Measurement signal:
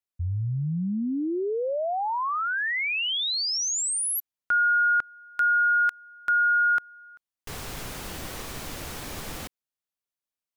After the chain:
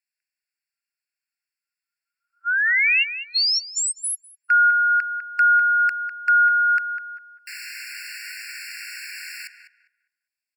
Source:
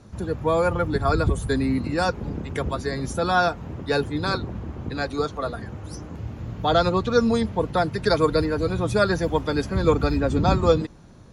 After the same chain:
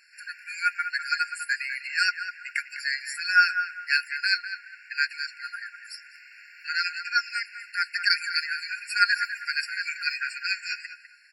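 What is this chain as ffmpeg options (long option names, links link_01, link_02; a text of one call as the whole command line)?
ffmpeg -i in.wav -filter_complex "[0:a]equalizer=frequency=2900:width=0.41:gain=9.5,asplit=2[link_01][link_02];[link_02]adelay=201,lowpass=frequency=1400:poles=1,volume=-6dB,asplit=2[link_03][link_04];[link_04]adelay=201,lowpass=frequency=1400:poles=1,volume=0.36,asplit=2[link_05][link_06];[link_06]adelay=201,lowpass=frequency=1400:poles=1,volume=0.36,asplit=2[link_07][link_08];[link_08]adelay=201,lowpass=frequency=1400:poles=1,volume=0.36[link_09];[link_01][link_03][link_05][link_07][link_09]amix=inputs=5:normalize=0,afftfilt=real='re*eq(mod(floor(b*sr/1024/1400),2),1)':imag='im*eq(mod(floor(b*sr/1024/1400),2),1)':win_size=1024:overlap=0.75" out.wav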